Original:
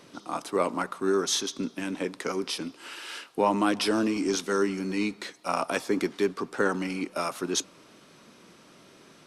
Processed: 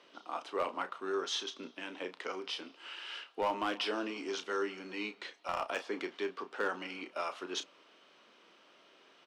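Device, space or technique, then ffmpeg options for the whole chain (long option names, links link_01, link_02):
megaphone: -filter_complex "[0:a]highpass=450,lowpass=4000,equalizer=frequency=3000:width_type=o:width=0.29:gain=7,asoftclip=type=hard:threshold=-18.5dB,asplit=2[link_01][link_02];[link_02]adelay=33,volume=-10dB[link_03];[link_01][link_03]amix=inputs=2:normalize=0,volume=-6.5dB"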